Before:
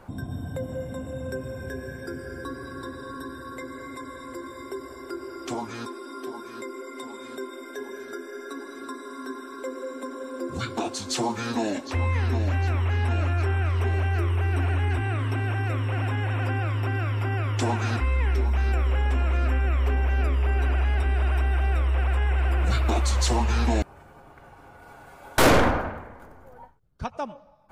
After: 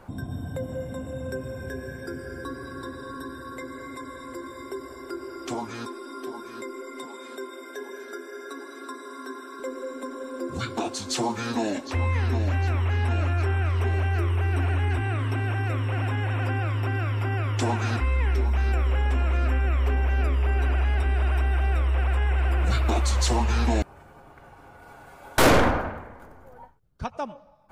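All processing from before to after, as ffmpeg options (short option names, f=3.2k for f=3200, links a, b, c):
-filter_complex "[0:a]asettb=1/sr,asplit=3[a][b][c];[a]atrim=end=7.054[d];[b]atrim=start=7.05:end=9.6,asetpts=PTS-STARTPTS,afade=t=in:d=0.004:c=qsin,afade=t=out:st=2.546:d=0.004:c=qsin,highpass=300,aecho=1:1:917:0.075,atrim=end_sample=112455[e];[c]atrim=start=9.596[f];[d][e]acrossfade=d=0.004:c1=hsin:c2=qsin[g];[g][f]acrossfade=d=0.004:c1=qsin:c2=hsin"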